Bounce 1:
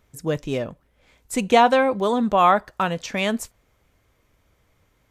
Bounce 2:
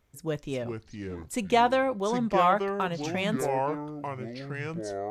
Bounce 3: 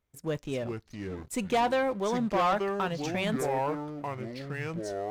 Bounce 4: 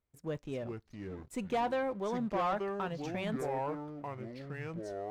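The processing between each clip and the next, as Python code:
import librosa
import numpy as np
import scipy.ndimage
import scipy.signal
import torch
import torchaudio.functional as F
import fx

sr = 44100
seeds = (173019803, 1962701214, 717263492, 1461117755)

y1 = fx.echo_pitch(x, sr, ms=304, semitones=-5, count=2, db_per_echo=-6.0)
y1 = F.gain(torch.from_numpy(y1), -7.0).numpy()
y2 = fx.leveller(y1, sr, passes=2)
y2 = F.gain(torch.from_numpy(y2), -8.0).numpy()
y3 = fx.high_shelf(y2, sr, hz=2700.0, db=-7.5)
y3 = F.gain(torch.from_numpy(y3), -5.5).numpy()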